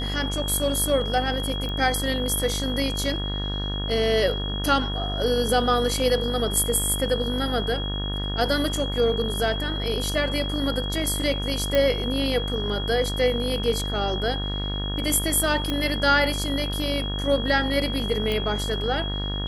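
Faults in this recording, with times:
buzz 50 Hz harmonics 37 -29 dBFS
whine 3.3 kHz -31 dBFS
1.69 s: pop -20 dBFS
11.75 s: pop -9 dBFS
15.70 s: pop -13 dBFS
18.32 s: pop

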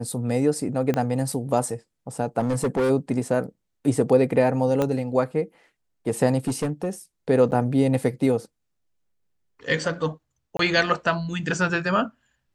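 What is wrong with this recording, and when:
0.94 s: pop -12 dBFS
2.39–2.91 s: clipped -18.5 dBFS
4.82 s: pop -11 dBFS
6.47–6.89 s: clipped -19.5 dBFS
7.51–7.52 s: dropout 9.2 ms
10.57–10.59 s: dropout 23 ms

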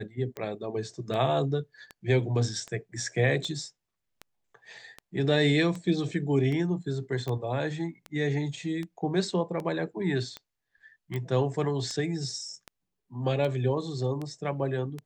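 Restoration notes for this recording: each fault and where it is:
tick 78 rpm -23 dBFS
7.28 s: pop -21 dBFS
11.16 s: pop -22 dBFS

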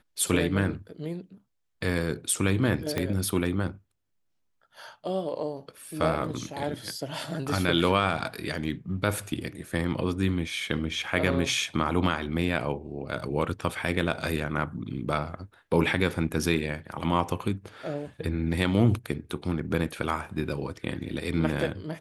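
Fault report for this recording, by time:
2.98 s: pop -13 dBFS

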